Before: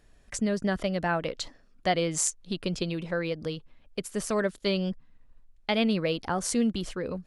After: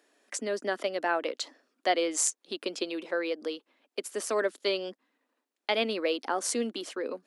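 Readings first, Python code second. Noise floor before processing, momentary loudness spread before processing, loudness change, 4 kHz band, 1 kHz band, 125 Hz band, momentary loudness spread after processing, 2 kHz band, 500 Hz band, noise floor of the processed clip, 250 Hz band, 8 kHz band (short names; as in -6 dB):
-59 dBFS, 12 LU, -1.5 dB, 0.0 dB, 0.0 dB, under -20 dB, 11 LU, 0.0 dB, 0.0 dB, under -85 dBFS, -8.0 dB, 0.0 dB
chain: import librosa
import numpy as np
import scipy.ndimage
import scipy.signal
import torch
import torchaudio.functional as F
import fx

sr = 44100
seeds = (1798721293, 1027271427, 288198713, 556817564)

y = scipy.signal.sosfilt(scipy.signal.butter(8, 260.0, 'highpass', fs=sr, output='sos'), x)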